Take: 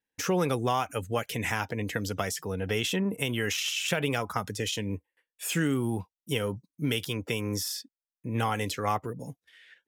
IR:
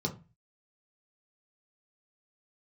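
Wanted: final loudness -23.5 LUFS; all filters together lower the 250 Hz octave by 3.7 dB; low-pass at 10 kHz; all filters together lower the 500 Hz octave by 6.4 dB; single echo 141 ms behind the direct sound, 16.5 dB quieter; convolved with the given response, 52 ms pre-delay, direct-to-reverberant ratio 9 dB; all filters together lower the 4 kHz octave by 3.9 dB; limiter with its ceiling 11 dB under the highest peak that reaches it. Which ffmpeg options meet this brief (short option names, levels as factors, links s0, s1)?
-filter_complex "[0:a]lowpass=10000,equalizer=f=250:t=o:g=-3,equalizer=f=500:t=o:g=-7,equalizer=f=4000:t=o:g=-5.5,alimiter=level_in=1.06:limit=0.0631:level=0:latency=1,volume=0.944,aecho=1:1:141:0.15,asplit=2[s0][s1];[1:a]atrim=start_sample=2205,adelay=52[s2];[s1][s2]afir=irnorm=-1:irlink=0,volume=0.211[s3];[s0][s3]amix=inputs=2:normalize=0,volume=3.35"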